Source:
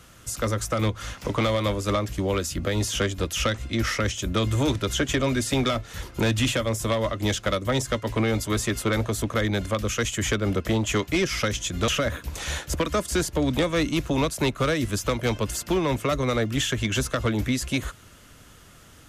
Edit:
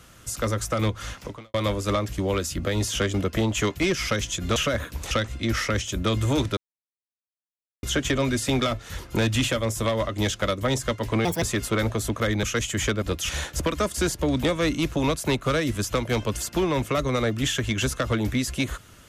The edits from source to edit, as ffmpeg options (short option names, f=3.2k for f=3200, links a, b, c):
-filter_complex "[0:a]asplit=10[a][b][c][d][e][f][g][h][i][j];[a]atrim=end=1.54,asetpts=PTS-STARTPTS,afade=t=out:st=1.15:d=0.39:c=qua[k];[b]atrim=start=1.54:end=3.142,asetpts=PTS-STARTPTS,afade=t=in:d=0.004:c=hsin[l];[c]atrim=start=10.458:end=12.432[m];[d]atrim=start=3.408:end=4.87,asetpts=PTS-STARTPTS,afade=t=out:st=1.458:d=0.004:c=hsin,apad=pad_dur=1.26[n];[e]atrim=start=4.87:end=8.294,asetpts=PTS-STARTPTS,afade=t=in:d=0.004:c=hsin[o];[f]atrim=start=8.29:end=8.56,asetpts=PTS-STARTPTS,asetrate=69678,aresample=44100,atrim=end_sample=7536,asetpts=PTS-STARTPTS[p];[g]atrim=start=8.556:end=9.572[q];[h]atrim=start=9.868:end=10.462[r];[i]atrim=start=3.138:end=3.412[s];[j]atrim=start=12.428[t];[k][l]concat=n=2:v=0:a=1[u];[u][m]acrossfade=d=0.004:c1=hsin:c2=hsin[v];[n][o]concat=n=2:v=0:a=1[w];[v][w]acrossfade=d=0.004:c1=hsin:c2=hsin[x];[x][p]acrossfade=d=0.004:c1=hsin:c2=hsin[y];[y][q]acrossfade=d=0.004:c1=hsin:c2=hsin[z];[z][r]acrossfade=d=0.004:c1=hsin:c2=hsin[aa];[aa][s]acrossfade=d=0.004:c1=hsin:c2=hsin[ab];[ab][t]acrossfade=d=0.004:c1=hsin:c2=hsin"